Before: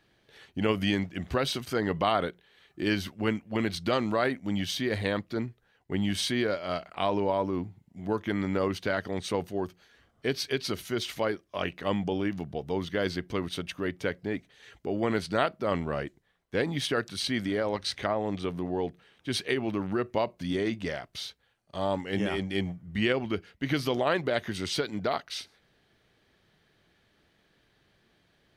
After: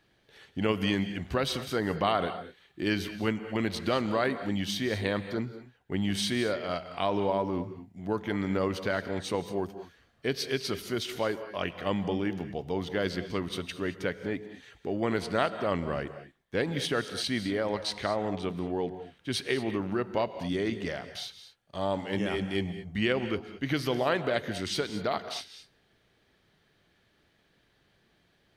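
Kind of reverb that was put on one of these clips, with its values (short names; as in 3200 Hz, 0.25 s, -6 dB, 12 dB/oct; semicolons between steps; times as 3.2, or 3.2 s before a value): non-linear reverb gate 0.25 s rising, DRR 11 dB; gain -1 dB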